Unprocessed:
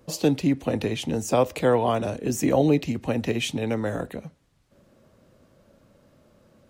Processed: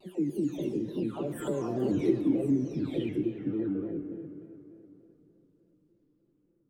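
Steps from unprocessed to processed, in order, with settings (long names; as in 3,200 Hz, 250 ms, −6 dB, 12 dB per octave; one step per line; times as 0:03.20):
every frequency bin delayed by itself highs early, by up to 900 ms
source passing by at 0:01.97, 24 m/s, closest 2.5 metres
parametric band 310 Hz +11 dB 0.53 octaves
downward compressor 4 to 1, threshold −44 dBFS, peak gain reduction 18.5 dB
low shelf with overshoot 480 Hz +9 dB, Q 1.5
convolution reverb RT60 3.4 s, pre-delay 35 ms, DRR 8.5 dB
pitch modulation by a square or saw wave square 3.4 Hz, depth 100 cents
level +7 dB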